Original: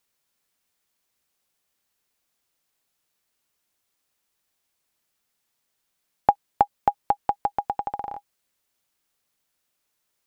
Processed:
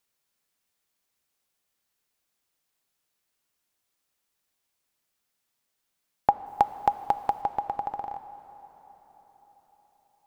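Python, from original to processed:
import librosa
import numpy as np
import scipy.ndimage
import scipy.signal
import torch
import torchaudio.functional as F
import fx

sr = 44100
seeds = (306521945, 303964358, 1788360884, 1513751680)

y = fx.high_shelf(x, sr, hz=3000.0, db=11.0, at=(6.46, 7.42))
y = fx.rev_plate(y, sr, seeds[0], rt60_s=4.9, hf_ratio=0.8, predelay_ms=0, drr_db=12.0)
y = y * librosa.db_to_amplitude(-3.0)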